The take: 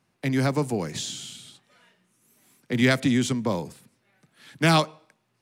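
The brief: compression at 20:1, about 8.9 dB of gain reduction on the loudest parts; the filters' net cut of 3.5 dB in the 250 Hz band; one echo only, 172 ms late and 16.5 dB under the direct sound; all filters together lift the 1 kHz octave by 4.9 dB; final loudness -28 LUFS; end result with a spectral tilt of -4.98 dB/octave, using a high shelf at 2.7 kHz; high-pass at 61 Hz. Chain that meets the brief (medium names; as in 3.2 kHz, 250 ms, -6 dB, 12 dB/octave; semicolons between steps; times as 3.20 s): high-pass 61 Hz; peaking EQ 250 Hz -4.5 dB; peaking EQ 1 kHz +7 dB; treble shelf 2.7 kHz -3.5 dB; compression 20:1, threshold -22 dBFS; delay 172 ms -16.5 dB; trim +2 dB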